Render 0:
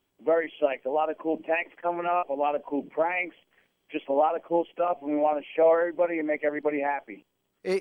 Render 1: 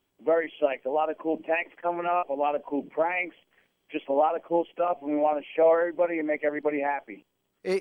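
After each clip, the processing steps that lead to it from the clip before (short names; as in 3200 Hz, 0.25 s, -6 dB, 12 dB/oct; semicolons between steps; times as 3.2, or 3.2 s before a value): nothing audible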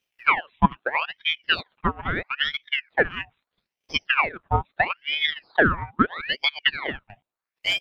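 transient shaper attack +11 dB, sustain -11 dB; ring modulator with a swept carrier 1600 Hz, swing 75%, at 0.77 Hz; gain -1 dB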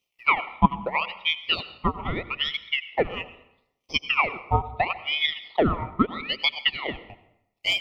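Butterworth band-stop 1600 Hz, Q 2.3; on a send at -14 dB: reverb RT60 0.80 s, pre-delay 78 ms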